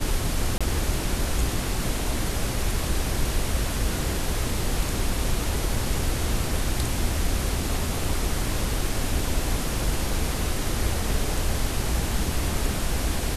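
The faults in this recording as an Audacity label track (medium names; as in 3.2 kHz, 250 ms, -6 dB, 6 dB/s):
0.580000	0.610000	dropout 26 ms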